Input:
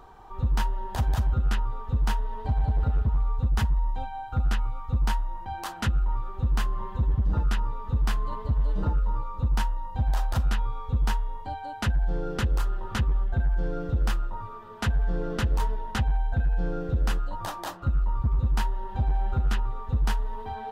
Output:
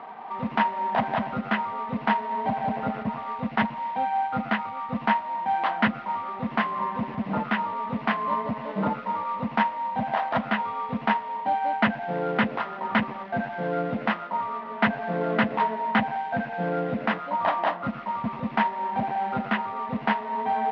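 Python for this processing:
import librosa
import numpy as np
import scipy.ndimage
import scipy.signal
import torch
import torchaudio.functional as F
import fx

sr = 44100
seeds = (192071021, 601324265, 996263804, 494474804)

y = fx.cvsd(x, sr, bps=32000)
y = fx.cabinet(y, sr, low_hz=190.0, low_slope=24, high_hz=3000.0, hz=(220.0, 350.0, 670.0, 1000.0, 2000.0), db=(8, -8, 10, 5, 8))
y = y * librosa.db_to_amplitude(6.5)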